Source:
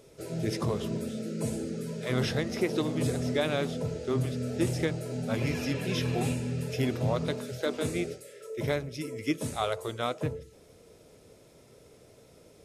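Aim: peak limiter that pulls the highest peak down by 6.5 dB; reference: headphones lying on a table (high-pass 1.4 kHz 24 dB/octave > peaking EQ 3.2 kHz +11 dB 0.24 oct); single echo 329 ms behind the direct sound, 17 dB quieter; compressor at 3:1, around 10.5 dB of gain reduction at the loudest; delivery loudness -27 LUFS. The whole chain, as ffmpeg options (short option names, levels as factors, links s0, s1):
-af "acompressor=threshold=0.0126:ratio=3,alimiter=level_in=2.11:limit=0.0631:level=0:latency=1,volume=0.473,highpass=f=1400:w=0.5412,highpass=f=1400:w=1.3066,equalizer=f=3200:t=o:w=0.24:g=11,aecho=1:1:329:0.141,volume=10.6"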